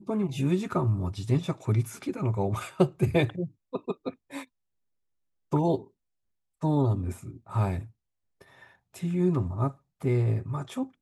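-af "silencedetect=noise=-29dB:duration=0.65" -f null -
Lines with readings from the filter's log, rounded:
silence_start: 4.41
silence_end: 5.53 | silence_duration: 1.12
silence_start: 5.76
silence_end: 6.63 | silence_duration: 0.87
silence_start: 7.79
silence_end: 9.03 | silence_duration: 1.24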